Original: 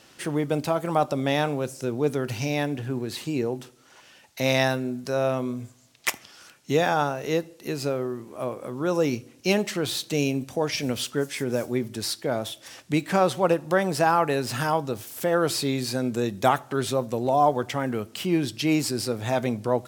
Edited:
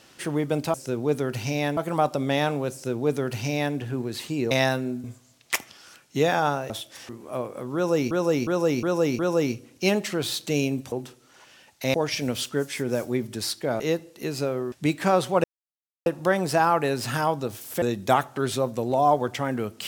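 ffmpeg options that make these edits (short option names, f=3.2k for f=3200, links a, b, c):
-filter_complex "[0:a]asplit=17[a][b][c][d][e][f][g][h][i][j][k][l][m][n][o][p][q];[a]atrim=end=0.742[r];[b]atrim=start=1.688:end=2.722[s];[c]atrim=start=0.738:end=3.482[t];[d]atrim=start=4.498:end=5.032[u];[e]atrim=start=5.578:end=7.242[v];[f]atrim=start=12.408:end=12.802[w];[g]atrim=start=8.158:end=9.182[x];[h]atrim=start=8.818:end=9.182[y];[i]atrim=start=8.818:end=9.182[z];[j]atrim=start=8.818:end=9.182[aa];[k]atrim=start=8.818:end=10.552[ab];[l]atrim=start=3.478:end=4.502[ac];[m]atrim=start=10.548:end=12.412[ad];[n]atrim=start=7.238:end=8.162[ae];[o]atrim=start=12.798:end=13.52,asetpts=PTS-STARTPTS,afade=t=out:st=0.718:d=0.004:c=hsin,apad=pad_dur=0.62[af];[p]atrim=start=13.52:end=15.282,asetpts=PTS-STARTPTS,afade=t=in:d=0.004:c=hsin[ag];[q]atrim=start=16.168[ah];[r][s]acrossfade=d=0.004:c1=hsin:c2=hsin[ai];[ai][t]acrossfade=d=0.004:c1=hsin:c2=hsin[aj];[aj][u]acrossfade=d=0.004:c1=hsin:c2=hsin[ak];[ak][v]acrossfade=d=0.004:c1=hsin:c2=hsin[al];[al][w]acrossfade=d=0.004:c1=hsin:c2=hsin[am];[am][x]acrossfade=d=0.004:c1=hsin:c2=hsin[an];[an][y]acrossfade=d=0.004:c1=hsin:c2=hsin[ao];[ao][z]acrossfade=d=0.004:c1=hsin:c2=hsin[ap];[ap][aa]acrossfade=d=0.004:c1=hsin:c2=hsin[aq];[aq][ab]acrossfade=d=0.004:c1=hsin:c2=hsin[ar];[ar][ac]acrossfade=d=0.004:c1=hsin:c2=hsin[as];[as][ad]acrossfade=d=0.004:c1=hsin:c2=hsin[at];[at][ae]acrossfade=d=0.004:c1=hsin:c2=hsin[au];[af][ag]concat=n=2:v=0:a=1[av];[au][av]acrossfade=d=0.004:c1=hsin:c2=hsin[aw];[aw][ah]acrossfade=d=0.004:c1=hsin:c2=hsin"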